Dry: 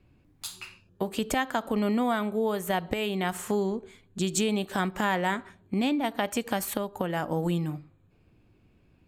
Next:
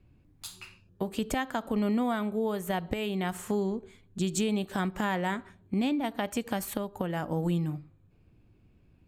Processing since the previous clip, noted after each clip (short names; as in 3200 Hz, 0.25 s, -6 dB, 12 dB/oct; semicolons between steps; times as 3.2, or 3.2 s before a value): low shelf 230 Hz +7 dB; gain -4.5 dB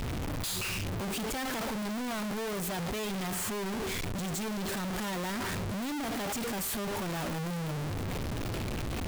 infinite clipping; gain -2 dB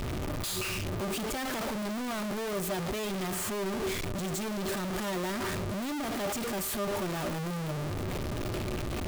small resonant body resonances 370/600/1200 Hz, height 8 dB, ringing for 85 ms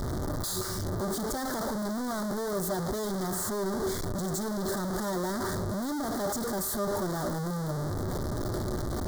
Butterworth band-stop 2600 Hz, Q 1.1; gain +2 dB